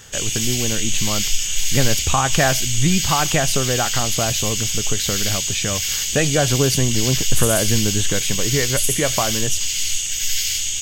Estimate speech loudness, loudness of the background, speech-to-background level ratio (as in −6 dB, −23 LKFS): −22.5 LKFS, −20.0 LKFS, −2.5 dB